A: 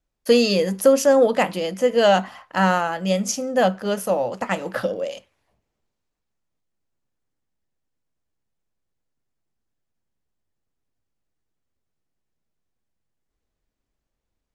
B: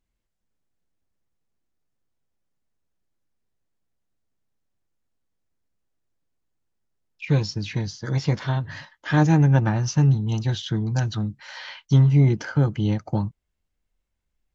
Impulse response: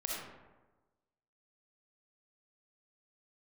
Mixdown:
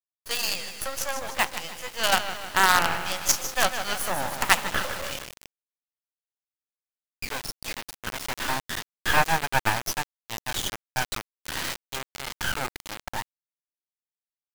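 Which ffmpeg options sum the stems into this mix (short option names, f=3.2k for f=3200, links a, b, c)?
-filter_complex "[0:a]volume=-1dB,asplit=2[a][b];[b]volume=-8.5dB[c];[1:a]highshelf=f=2.3k:g=-11.5,volume=-1dB[d];[c]aecho=0:1:152|304|456|608|760|912|1064|1216:1|0.53|0.281|0.149|0.0789|0.0418|0.0222|0.0117[e];[a][d][e]amix=inputs=3:normalize=0,highpass=f=870:w=0.5412,highpass=f=870:w=1.3066,acrusher=bits=4:dc=4:mix=0:aa=0.000001,dynaudnorm=f=600:g=11:m=16.5dB"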